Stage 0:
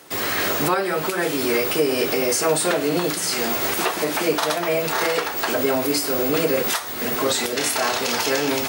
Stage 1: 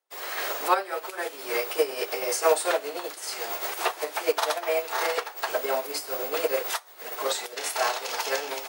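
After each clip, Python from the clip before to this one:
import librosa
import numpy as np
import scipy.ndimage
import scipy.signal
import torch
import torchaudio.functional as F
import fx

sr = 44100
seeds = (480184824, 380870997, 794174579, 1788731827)

y = scipy.signal.sosfilt(scipy.signal.butter(4, 420.0, 'highpass', fs=sr, output='sos'), x)
y = fx.peak_eq(y, sr, hz=810.0, db=3.5, octaves=0.85)
y = fx.upward_expand(y, sr, threshold_db=-42.0, expansion=2.5)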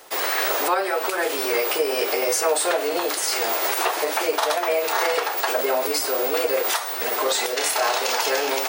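y = fx.low_shelf(x, sr, hz=230.0, db=6.0)
y = fx.wow_flutter(y, sr, seeds[0], rate_hz=2.1, depth_cents=28.0)
y = fx.env_flatten(y, sr, amount_pct=70)
y = y * librosa.db_to_amplitude(-2.0)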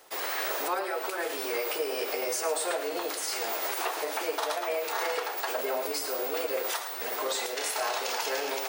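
y = x + 10.0 ** (-11.0 / 20.0) * np.pad(x, (int(111 * sr / 1000.0), 0))[:len(x)]
y = y * librosa.db_to_amplitude(-9.0)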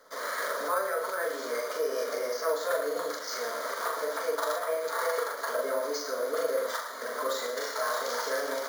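y = fx.fixed_phaser(x, sr, hz=530.0, stages=8)
y = fx.doubler(y, sr, ms=41.0, db=-4.0)
y = np.repeat(scipy.signal.resample_poly(y, 1, 4), 4)[:len(y)]
y = y * librosa.db_to_amplitude(2.5)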